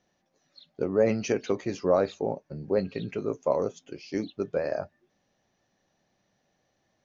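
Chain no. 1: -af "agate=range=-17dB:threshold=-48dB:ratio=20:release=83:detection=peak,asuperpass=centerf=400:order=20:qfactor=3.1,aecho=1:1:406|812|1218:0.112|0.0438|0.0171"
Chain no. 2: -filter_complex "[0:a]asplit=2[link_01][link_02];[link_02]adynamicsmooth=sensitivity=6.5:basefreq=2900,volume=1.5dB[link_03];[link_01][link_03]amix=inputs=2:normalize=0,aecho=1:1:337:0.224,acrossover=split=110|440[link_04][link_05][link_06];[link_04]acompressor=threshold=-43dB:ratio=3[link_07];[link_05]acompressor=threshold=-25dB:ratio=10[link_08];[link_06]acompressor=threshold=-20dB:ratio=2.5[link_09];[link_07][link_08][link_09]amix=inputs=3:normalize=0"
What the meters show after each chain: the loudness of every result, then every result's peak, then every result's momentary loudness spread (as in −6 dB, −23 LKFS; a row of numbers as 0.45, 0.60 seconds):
−33.5, −25.5 LKFS; −16.5, −8.5 dBFS; 14, 9 LU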